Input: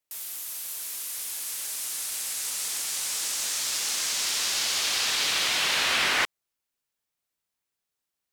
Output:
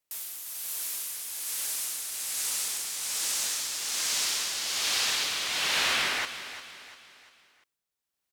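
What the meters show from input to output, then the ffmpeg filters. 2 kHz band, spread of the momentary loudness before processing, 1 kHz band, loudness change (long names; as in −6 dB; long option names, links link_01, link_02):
−3.0 dB, 10 LU, −3.0 dB, −2.0 dB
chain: -filter_complex "[0:a]asplit=2[link_01][link_02];[link_02]alimiter=limit=-22dB:level=0:latency=1,volume=0dB[link_03];[link_01][link_03]amix=inputs=2:normalize=0,tremolo=f=1.2:d=0.48,aecho=1:1:347|694|1041|1388:0.237|0.104|0.0459|0.0202,volume=-4.5dB"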